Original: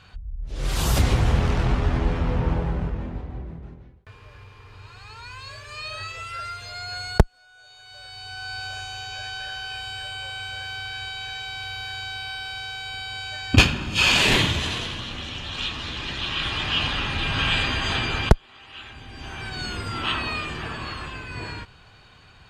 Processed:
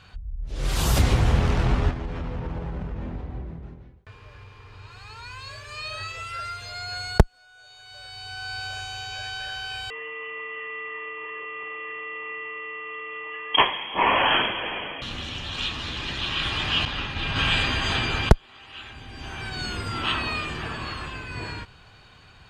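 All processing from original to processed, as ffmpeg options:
-filter_complex "[0:a]asettb=1/sr,asplit=3[a][b][c];[a]atrim=end=1.904[d];[b]atrim=start=1.9:end=4.91,asetpts=PTS-STARTPTS,afade=t=in:d=0.004:c=qsin,afade=t=out:st=3.006:d=0.004:c=qsin,equalizer=f=12k:w=1.1:g=-6.5,acompressor=threshold=-27dB:ratio=6:attack=3.2:release=140:knee=1:detection=peak[e];[c]atrim=start=4.906[f];[d][e]acrossfade=d=0.004:c1=hsin:c2=qsin[g];[g][f]acrossfade=d=0.004:c1=qsin:c2=hsin,asettb=1/sr,asplit=3[h][i][j];[h]atrim=end=9.904[k];[i]atrim=start=9.9:end=15.02,asetpts=PTS-STARTPTS,afade=t=in:d=0.004:c=qsin,afade=t=out:st=5.116:d=0.004:c=qsin,highpass=f=210:w=0.5412,highpass=f=210:w=1.3066,equalizer=f=1.1k:w=3.7:g=3.5,lowpass=f=3k:t=q:w=0.5098,lowpass=f=3k:t=q:w=0.6013,lowpass=f=3k:t=q:w=0.9,lowpass=f=3k:t=q:w=2.563,afreqshift=-3500[l];[j]atrim=start=15.016[m];[k][l]acrossfade=d=0.004:c1=hsin:c2=qsin[n];[n][m]acrossfade=d=0.004:c1=qsin:c2=hsin,asettb=1/sr,asplit=3[o][p][q];[o]atrim=end=16.854[r];[p]atrim=start=16.85:end=17.36,asetpts=PTS-STARTPTS,afade=t=in:d=0.004:c=qsin,afade=t=out:st=0.506:d=0.004:c=qsin,lowpass=6.8k,agate=range=-33dB:threshold=-23dB:ratio=3:release=100:detection=peak[s];[q]atrim=start=17.356[t];[r][s]acrossfade=d=0.004:c1=hsin:c2=qsin[u];[u][t]acrossfade=d=0.004:c1=qsin:c2=hsin"

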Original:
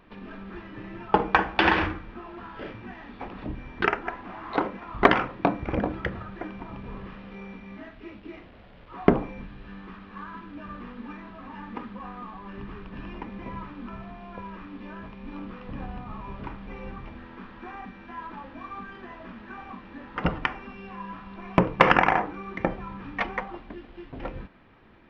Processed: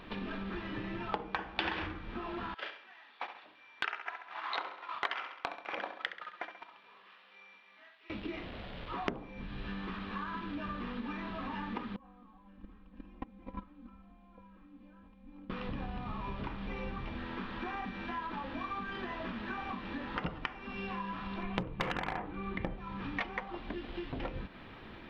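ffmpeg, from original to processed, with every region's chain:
-filter_complex "[0:a]asettb=1/sr,asplit=3[a][b][c];[a]atrim=end=2.544[d];[b]atrim=start=2.54:end=8.1,asetpts=PTS-STARTPTS,afade=t=in:d=0.004:c=qsin,afade=t=out:st=5.556:d=0.004:c=qsin,highpass=960,agate=range=-16dB:threshold=-44dB:ratio=16:release=100:detection=peak,aecho=1:1:67|134|201|268:0.299|0.119|0.0478|0.0191,atrim=end_sample=245196[e];[c]atrim=start=8.096[f];[d][e]acrossfade=d=0.004:c1=hsin:c2=qsin[g];[g][f]acrossfade=d=0.004:c1=qsin:c2=hsin,asettb=1/sr,asplit=3[h][i][j];[h]atrim=end=11.964[k];[i]atrim=start=11.96:end=15.5,asetpts=PTS-STARTPTS,afade=t=in:d=0.004:c=qsin,afade=t=out:st=3.536:d=0.004:c=qsin,agate=range=-30dB:threshold=-33dB:ratio=16:release=100:detection=peak,tiltshelf=f=1.3k:g=6,aecho=1:1:3.8:0.94,atrim=end_sample=156114[l];[j]atrim=start=15.496[m];[k][l]acrossfade=d=0.004:c1=hsin:c2=qsin[n];[n][m]acrossfade=d=0.004:c1=qsin:c2=hsin,asettb=1/sr,asplit=3[o][p][q];[o]atrim=end=21.434[r];[p]atrim=start=21.43:end=22.78,asetpts=PTS-STARTPTS,afade=t=in:d=0.004:c=qsin,afade=t=out:st=1.346:d=0.004:c=qsin,lowpass=f=4.2k:w=0.5412,lowpass=f=4.2k:w=1.3066,lowshelf=f=180:g=11,aeval=exprs='clip(val(0),-1,0.2)':c=same[s];[q]atrim=start=22.776[t];[r][s]acrossfade=d=0.004:c1=hsin:c2=qsin[u];[u][t]acrossfade=d=0.004:c1=qsin:c2=hsin,acompressor=threshold=-42dB:ratio=5,equalizer=f=3.7k:w=1.4:g=7,volume=5.5dB"

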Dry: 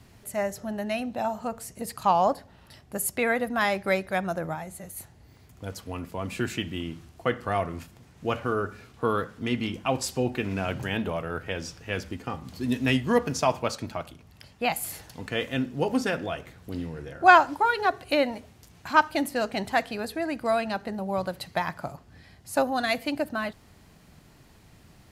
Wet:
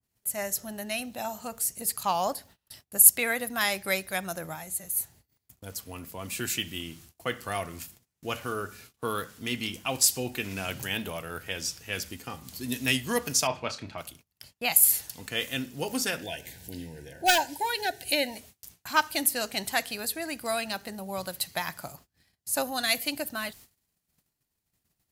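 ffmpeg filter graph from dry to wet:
-filter_complex "[0:a]asettb=1/sr,asplit=3[a][b][c];[a]atrim=end=13.474[d];[b]atrim=start=13.47:end=13.98,asetpts=PTS-STARTPTS,afade=t=in:d=0.004:c=qsin,afade=t=out:st=0.506:d=0.004:c=qsin,lowpass=3k,asplit=2[e][f];[f]adelay=30,volume=-9dB[g];[e][g]amix=inputs=2:normalize=0,atrim=end_sample=22491[h];[c]atrim=start=13.976[i];[d][h]acrossfade=d=0.004:c1=hsin:c2=qsin[j];[j][i]acrossfade=d=0.004:c1=qsin:c2=hsin,asettb=1/sr,asplit=3[k][l][m];[k]atrim=end=16.224[n];[l]atrim=start=16.22:end=18.37,asetpts=PTS-STARTPTS,afade=t=in:d=0.004:c=qsin,afade=t=out:st=2.146:d=0.004:c=qsin,acompressor=mode=upward:threshold=-35dB:ratio=2.5:attack=3.2:release=140:knee=2.83:detection=peak,asoftclip=type=hard:threshold=-11dB,asuperstop=centerf=1200:order=20:qfactor=2.5[o];[m]atrim=start=18.366[p];[n][o]acrossfade=d=0.004:c1=hsin:c2=qsin[q];[q][p]acrossfade=d=0.004:c1=qsin:c2=hsin,aemphasis=mode=production:type=75fm,agate=range=-27dB:threshold=-47dB:ratio=16:detection=peak,adynamicequalizer=threshold=0.0126:dfrequency=1700:dqfactor=0.7:tfrequency=1700:tqfactor=0.7:attack=5:release=100:ratio=0.375:range=3:mode=boostabove:tftype=highshelf,volume=-6dB"

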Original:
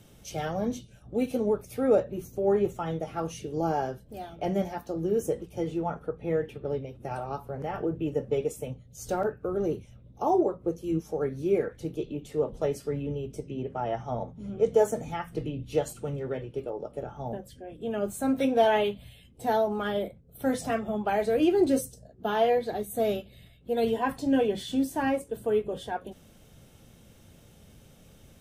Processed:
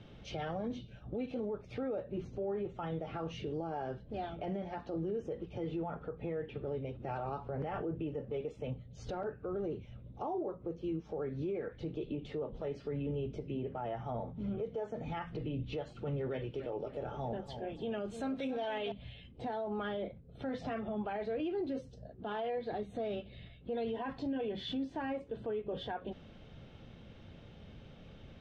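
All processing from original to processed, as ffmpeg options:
-filter_complex "[0:a]asettb=1/sr,asplit=3[a][b][c];[a]atrim=end=16.304[d];[b]atrim=start=16.3:end=18.92,asetpts=PTS-STARTPTS,afade=t=in:d=0.004:c=qsin,afade=t=out:st=2.616:d=0.004:c=qsin,aemphasis=mode=production:type=75fm,aecho=1:1:288|576|864:0.224|0.0694|0.0215,atrim=end_sample=115542[e];[c]atrim=start=18.916[f];[d][e]acrossfade=d=0.004:c1=hsin:c2=qsin[g];[g][f]acrossfade=d=0.004:c1=qsin:c2=hsin,lowpass=f=3.9k:w=0.5412,lowpass=f=3.9k:w=1.3066,acompressor=threshold=-33dB:ratio=6,alimiter=level_in=7.5dB:limit=-24dB:level=0:latency=1:release=17,volume=-7.5dB,volume=1.5dB"

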